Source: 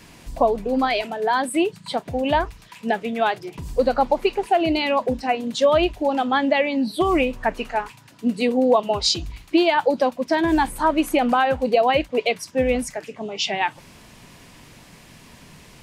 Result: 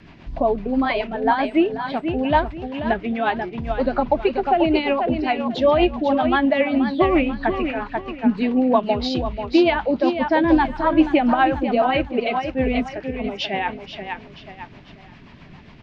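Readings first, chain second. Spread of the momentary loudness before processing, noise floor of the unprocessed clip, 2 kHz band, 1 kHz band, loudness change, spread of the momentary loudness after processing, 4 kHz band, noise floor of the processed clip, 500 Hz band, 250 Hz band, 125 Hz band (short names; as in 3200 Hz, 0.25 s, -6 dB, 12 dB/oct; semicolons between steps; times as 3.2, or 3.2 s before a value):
9 LU, -48 dBFS, +0.5 dB, +0.5 dB, +1.0 dB, 10 LU, -3.5 dB, -44 dBFS, 0.0 dB, +4.0 dB, +4.0 dB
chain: Gaussian blur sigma 2.4 samples; on a send: feedback echo 0.486 s, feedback 35%, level -7.5 dB; on the sum: rotary speaker horn 7.5 Hz; bell 490 Hz -10 dB 0.22 oct; gain +4.5 dB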